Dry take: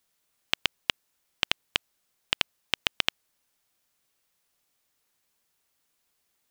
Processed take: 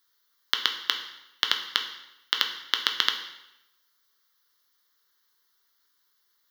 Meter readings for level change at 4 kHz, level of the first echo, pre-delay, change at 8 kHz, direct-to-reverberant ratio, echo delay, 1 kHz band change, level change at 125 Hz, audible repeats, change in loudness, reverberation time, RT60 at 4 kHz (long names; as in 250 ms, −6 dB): +4.0 dB, no echo audible, 4 ms, +1.0 dB, 4.0 dB, no echo audible, +4.5 dB, below −10 dB, no echo audible, +2.5 dB, 0.90 s, 0.80 s